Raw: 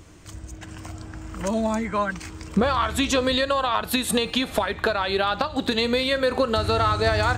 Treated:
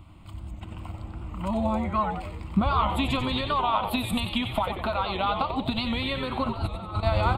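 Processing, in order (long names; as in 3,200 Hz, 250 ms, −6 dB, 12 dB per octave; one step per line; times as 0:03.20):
0:06.44–0:07.03: compressor whose output falls as the input rises −28 dBFS, ratio −0.5
high-shelf EQ 3,000 Hz −10.5 dB
phaser with its sweep stopped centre 1,700 Hz, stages 6
echo with shifted repeats 92 ms, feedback 48%, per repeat −140 Hz, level −7 dB
wow of a warped record 78 rpm, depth 100 cents
level +1 dB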